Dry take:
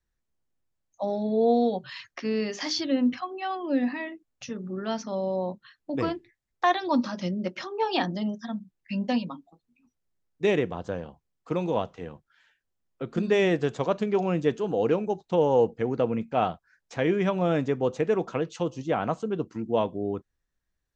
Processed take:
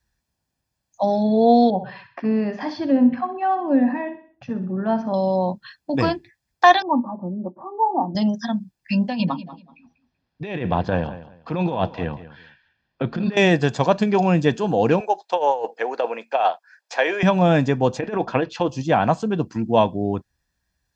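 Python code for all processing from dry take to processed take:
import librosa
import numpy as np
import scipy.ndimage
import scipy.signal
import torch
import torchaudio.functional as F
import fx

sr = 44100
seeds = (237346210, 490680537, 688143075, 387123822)

y = fx.chain(x, sr, fx.lowpass(hz=1200.0, slope=12),
    fx.echo_feedback(ms=63, feedback_pct=44, wet_db=-11.5), at=(1.7, 5.14))
y = fx.chain(y, sr, fx.cheby_ripple(hz=1200.0, ripple_db=6),
    fx.low_shelf(hz=240.0, db=-9.0), at=(6.82, 8.15))
y = fx.chain(y, sr, fx.lowpass(hz=4200.0, slope=24),
    fx.over_compress(threshold_db=-31.0, ratio=-1.0),
    fx.echo_feedback(ms=191, feedback_pct=22, wet_db=-15.5), at=(9.08, 13.37))
y = fx.chain(y, sr, fx.highpass(hz=470.0, slope=24),
    fx.high_shelf(hz=6000.0, db=-6.5),
    fx.over_compress(threshold_db=-26.0, ratio=-0.5), at=(15.0, 17.23))
y = fx.chain(y, sr, fx.lowpass(hz=3500.0, slope=12),
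    fx.peak_eq(hz=160.0, db=-14.5, octaves=0.26),
    fx.over_compress(threshold_db=-26.0, ratio=-0.5), at=(17.99, 18.69))
y = scipy.signal.sosfilt(scipy.signal.butter(2, 50.0, 'highpass', fs=sr, output='sos'), y)
y = fx.peak_eq(y, sr, hz=4800.0, db=6.5, octaves=0.27)
y = y + 0.43 * np.pad(y, (int(1.2 * sr / 1000.0), 0))[:len(y)]
y = F.gain(torch.from_numpy(y), 8.5).numpy()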